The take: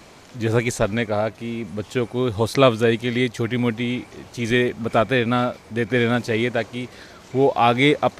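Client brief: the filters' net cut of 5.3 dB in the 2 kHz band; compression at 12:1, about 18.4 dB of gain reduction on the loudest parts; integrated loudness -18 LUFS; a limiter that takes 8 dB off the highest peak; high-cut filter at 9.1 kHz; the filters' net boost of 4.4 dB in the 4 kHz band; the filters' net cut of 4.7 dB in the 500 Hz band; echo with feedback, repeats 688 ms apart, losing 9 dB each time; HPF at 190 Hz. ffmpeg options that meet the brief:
-af "highpass=190,lowpass=9100,equalizer=f=500:t=o:g=-5.5,equalizer=f=2000:t=o:g=-8.5,equalizer=f=4000:t=o:g=8.5,acompressor=threshold=0.0282:ratio=12,alimiter=level_in=1.12:limit=0.0631:level=0:latency=1,volume=0.891,aecho=1:1:688|1376|2064|2752:0.355|0.124|0.0435|0.0152,volume=8.91"

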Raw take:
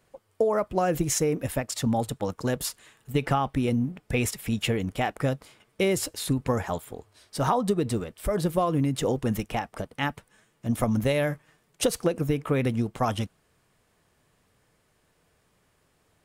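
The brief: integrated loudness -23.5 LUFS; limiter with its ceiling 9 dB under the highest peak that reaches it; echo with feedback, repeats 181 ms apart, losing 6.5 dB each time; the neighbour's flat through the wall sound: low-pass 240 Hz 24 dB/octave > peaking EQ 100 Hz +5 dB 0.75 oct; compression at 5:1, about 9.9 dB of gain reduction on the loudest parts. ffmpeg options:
-af "acompressor=threshold=0.0282:ratio=5,alimiter=level_in=1.26:limit=0.0631:level=0:latency=1,volume=0.794,lowpass=f=240:w=0.5412,lowpass=f=240:w=1.3066,equalizer=f=100:t=o:w=0.75:g=5,aecho=1:1:181|362|543|724|905|1086:0.473|0.222|0.105|0.0491|0.0231|0.0109,volume=5.96"

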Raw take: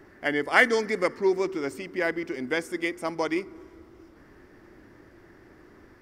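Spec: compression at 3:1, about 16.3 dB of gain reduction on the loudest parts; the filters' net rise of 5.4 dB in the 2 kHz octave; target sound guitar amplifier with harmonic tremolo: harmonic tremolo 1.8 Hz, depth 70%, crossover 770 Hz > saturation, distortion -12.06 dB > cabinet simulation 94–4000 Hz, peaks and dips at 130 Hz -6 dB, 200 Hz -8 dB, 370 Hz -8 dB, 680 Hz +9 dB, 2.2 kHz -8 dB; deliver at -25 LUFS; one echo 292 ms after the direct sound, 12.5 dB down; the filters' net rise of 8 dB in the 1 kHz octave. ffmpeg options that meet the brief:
-filter_complex "[0:a]equalizer=f=1000:t=o:g=5.5,equalizer=f=2000:t=o:g=8,acompressor=threshold=0.0398:ratio=3,aecho=1:1:292:0.237,acrossover=split=770[s0][s1];[s0]aeval=exprs='val(0)*(1-0.7/2+0.7/2*cos(2*PI*1.8*n/s))':c=same[s2];[s1]aeval=exprs='val(0)*(1-0.7/2-0.7/2*cos(2*PI*1.8*n/s))':c=same[s3];[s2][s3]amix=inputs=2:normalize=0,asoftclip=threshold=0.0422,highpass=94,equalizer=f=130:t=q:w=4:g=-6,equalizer=f=200:t=q:w=4:g=-8,equalizer=f=370:t=q:w=4:g=-8,equalizer=f=680:t=q:w=4:g=9,equalizer=f=2200:t=q:w=4:g=-8,lowpass=f=4000:w=0.5412,lowpass=f=4000:w=1.3066,volume=4.73"

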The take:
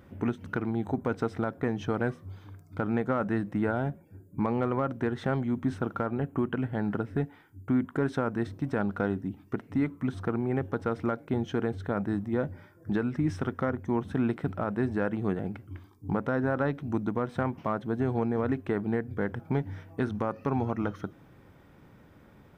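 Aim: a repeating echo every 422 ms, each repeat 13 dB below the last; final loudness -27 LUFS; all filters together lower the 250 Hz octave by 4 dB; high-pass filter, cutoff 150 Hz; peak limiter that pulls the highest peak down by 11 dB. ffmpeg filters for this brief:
-af "highpass=150,equalizer=f=250:t=o:g=-4,alimiter=level_in=1.26:limit=0.0631:level=0:latency=1,volume=0.794,aecho=1:1:422|844|1266:0.224|0.0493|0.0108,volume=3.76"

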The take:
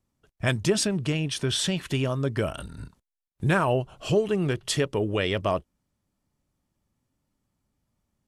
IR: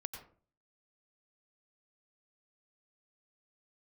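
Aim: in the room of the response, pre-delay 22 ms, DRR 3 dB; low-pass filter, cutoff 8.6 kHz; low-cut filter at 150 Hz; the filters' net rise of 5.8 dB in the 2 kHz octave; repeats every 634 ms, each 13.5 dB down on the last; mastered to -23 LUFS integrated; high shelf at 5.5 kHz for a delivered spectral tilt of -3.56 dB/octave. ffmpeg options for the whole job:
-filter_complex "[0:a]highpass=150,lowpass=8600,equalizer=f=2000:t=o:g=6.5,highshelf=f=5500:g=8,aecho=1:1:634|1268:0.211|0.0444,asplit=2[s0][s1];[1:a]atrim=start_sample=2205,adelay=22[s2];[s1][s2]afir=irnorm=-1:irlink=0,volume=0.891[s3];[s0][s3]amix=inputs=2:normalize=0"

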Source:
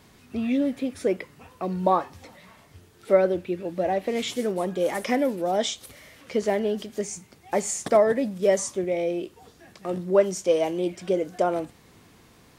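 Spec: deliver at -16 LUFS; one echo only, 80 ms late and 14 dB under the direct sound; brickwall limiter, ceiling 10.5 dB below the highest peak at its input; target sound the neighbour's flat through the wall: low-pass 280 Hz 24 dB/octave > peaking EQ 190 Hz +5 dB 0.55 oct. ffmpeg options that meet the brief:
-af "alimiter=limit=0.133:level=0:latency=1,lowpass=f=280:w=0.5412,lowpass=f=280:w=1.3066,equalizer=f=190:t=o:w=0.55:g=5,aecho=1:1:80:0.2,volume=7.08"

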